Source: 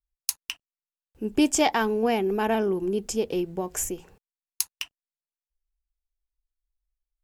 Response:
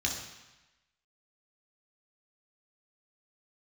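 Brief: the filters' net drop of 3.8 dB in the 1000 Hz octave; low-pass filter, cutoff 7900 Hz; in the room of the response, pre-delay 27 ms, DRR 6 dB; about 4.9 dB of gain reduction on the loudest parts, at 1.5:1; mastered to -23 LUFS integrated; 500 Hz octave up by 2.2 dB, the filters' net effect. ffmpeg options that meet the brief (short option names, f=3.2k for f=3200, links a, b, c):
-filter_complex "[0:a]lowpass=7.9k,equalizer=f=500:t=o:g=4.5,equalizer=f=1k:t=o:g=-7.5,acompressor=threshold=-29dB:ratio=1.5,asplit=2[a][b];[1:a]atrim=start_sample=2205,adelay=27[c];[b][c]afir=irnorm=-1:irlink=0,volume=-12dB[d];[a][d]amix=inputs=2:normalize=0,volume=5.5dB"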